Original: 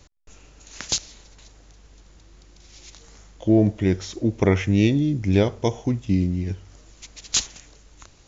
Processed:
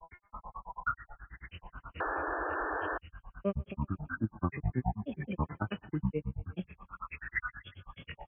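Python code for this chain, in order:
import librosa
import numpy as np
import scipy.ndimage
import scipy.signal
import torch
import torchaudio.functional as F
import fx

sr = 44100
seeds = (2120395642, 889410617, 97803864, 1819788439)

p1 = fx.freq_compress(x, sr, knee_hz=1100.0, ratio=4.0)
p2 = scipy.signal.sosfilt(scipy.signal.butter(2, 45.0, 'highpass', fs=sr, output='sos'), p1)
p3 = fx.level_steps(p2, sr, step_db=18)
p4 = p2 + (p3 * 10.0 ** (0.5 / 20.0))
p5 = fx.fixed_phaser(p4, sr, hz=1200.0, stages=4)
p6 = fx.comb_fb(p5, sr, f0_hz=280.0, decay_s=0.44, harmonics='all', damping=0.0, mix_pct=70)
p7 = fx.granulator(p6, sr, seeds[0], grain_ms=91.0, per_s=9.3, spray_ms=100.0, spread_st=12)
p8 = fx.air_absorb(p7, sr, metres=150.0)
p9 = p8 + fx.echo_feedback(p8, sr, ms=117, feedback_pct=47, wet_db=-23, dry=0)
p10 = fx.spec_paint(p9, sr, seeds[1], shape='noise', start_s=2.0, length_s=0.98, low_hz=280.0, high_hz=1800.0, level_db=-35.0)
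y = fx.band_squash(p10, sr, depth_pct=70)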